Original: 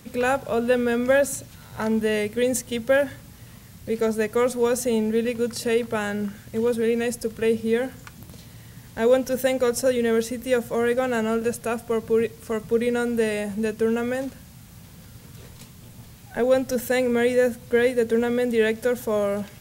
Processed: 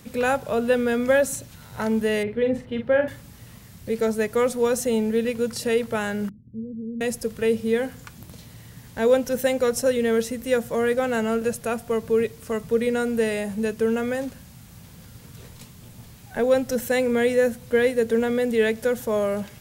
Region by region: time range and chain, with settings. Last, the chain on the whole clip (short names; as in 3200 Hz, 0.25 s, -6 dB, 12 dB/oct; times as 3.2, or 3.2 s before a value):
2.23–3.08 air absorption 420 m + doubler 43 ms -6.5 dB
6.29–7.01 inverse Chebyshev low-pass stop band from 1600 Hz, stop band 80 dB + low shelf 160 Hz -9 dB
whole clip: dry